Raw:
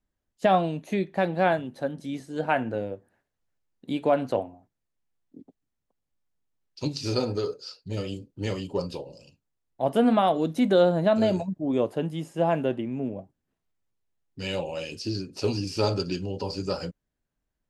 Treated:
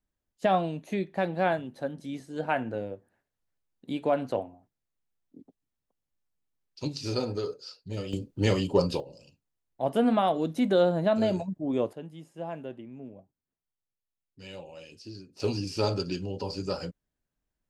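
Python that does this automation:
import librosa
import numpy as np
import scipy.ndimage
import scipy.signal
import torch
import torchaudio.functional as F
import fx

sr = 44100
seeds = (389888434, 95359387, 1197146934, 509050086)

y = fx.gain(x, sr, db=fx.steps((0.0, -3.5), (8.13, 5.5), (9.0, -3.0), (11.93, -13.0), (15.4, -2.5)))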